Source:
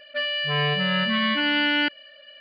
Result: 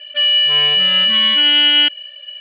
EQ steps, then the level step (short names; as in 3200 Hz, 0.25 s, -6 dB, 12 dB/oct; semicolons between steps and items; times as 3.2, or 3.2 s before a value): HPF 240 Hz 12 dB/oct; synth low-pass 3100 Hz, resonance Q 14; -2.0 dB